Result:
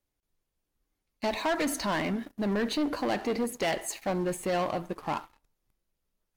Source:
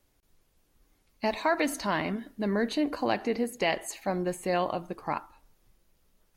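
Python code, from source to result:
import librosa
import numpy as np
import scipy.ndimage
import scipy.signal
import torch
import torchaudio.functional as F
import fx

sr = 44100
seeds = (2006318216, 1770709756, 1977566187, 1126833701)

y = fx.leveller(x, sr, passes=3)
y = y * librosa.db_to_amplitude(-8.0)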